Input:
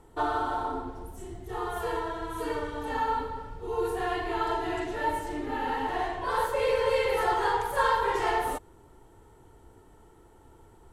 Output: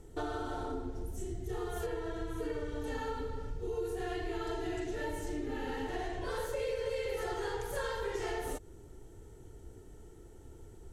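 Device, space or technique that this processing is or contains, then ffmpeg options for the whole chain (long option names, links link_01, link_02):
ASMR close-microphone chain: -filter_complex "[0:a]highshelf=frequency=10000:gain=-3.5,asettb=1/sr,asplit=3[link_01][link_02][link_03];[link_01]atrim=end=1.864[link_04];[link_02]atrim=start=1.86:end=2.84,asetpts=PTS-STARTPTS,afade=type=in:duration=0.004:curve=qsin,afade=type=out:start_time=0.976:duration=0.004:curve=qsin,acrossover=split=3100[link_05][link_06];[link_06]acompressor=threshold=-57dB:ratio=4:attack=1:release=60[link_07];[link_05][link_07]amix=inputs=2:normalize=0[link_08];[link_03]atrim=start=2.836[link_09];[link_04][link_08]acrossfade=duration=0.004:curve1=hsin:curve2=qsin[link_10];[link_10][link_09]acrossfade=duration=0.004:curve1=qsin:curve2=hsin,equalizer=frequency=400:width_type=o:width=0.67:gain=4,equalizer=frequency=1000:width_type=o:width=0.67:gain=-11,equalizer=frequency=6300:width_type=o:width=0.67:gain=8,lowshelf=frequency=170:gain=8,acompressor=threshold=-32dB:ratio=4,highshelf=frequency=11000:gain=6.5,volume=-2dB"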